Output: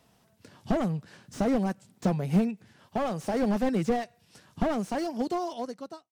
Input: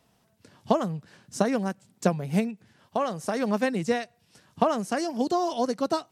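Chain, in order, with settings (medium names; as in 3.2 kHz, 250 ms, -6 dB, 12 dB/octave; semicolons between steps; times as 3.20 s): fade out at the end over 1.62 s; slew-rate limiter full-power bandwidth 29 Hz; trim +2 dB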